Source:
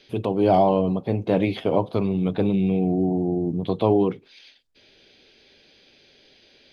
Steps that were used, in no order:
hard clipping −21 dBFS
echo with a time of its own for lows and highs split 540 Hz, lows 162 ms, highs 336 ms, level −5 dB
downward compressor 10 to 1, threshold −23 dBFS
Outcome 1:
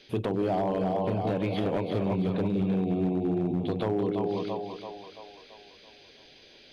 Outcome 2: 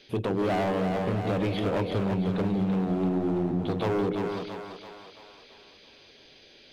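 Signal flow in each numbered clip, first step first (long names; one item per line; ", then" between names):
echo with a time of its own for lows and highs, then downward compressor, then hard clipping
hard clipping, then echo with a time of its own for lows and highs, then downward compressor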